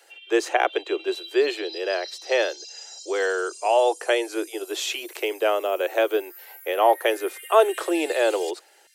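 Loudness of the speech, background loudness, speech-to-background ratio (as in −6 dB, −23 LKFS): −24.0 LKFS, −39.5 LKFS, 15.5 dB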